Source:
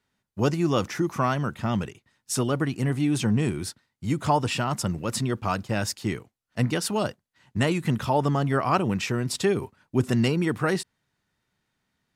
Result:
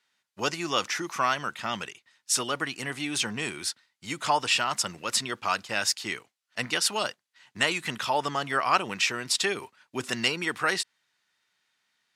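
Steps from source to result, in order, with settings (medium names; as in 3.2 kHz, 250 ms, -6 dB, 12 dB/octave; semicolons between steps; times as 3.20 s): band-pass filter 2.3 kHz, Q 0.56; treble shelf 3.3 kHz +10 dB; trim +2.5 dB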